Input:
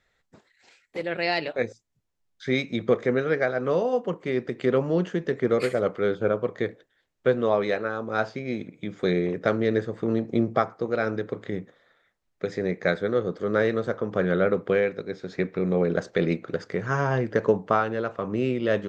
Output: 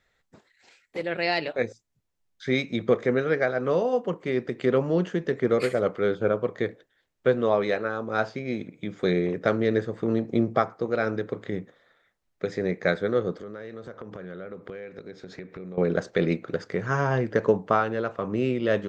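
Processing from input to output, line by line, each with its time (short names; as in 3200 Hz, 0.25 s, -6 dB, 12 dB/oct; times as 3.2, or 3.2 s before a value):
13.4–15.78 compressor, threshold -36 dBFS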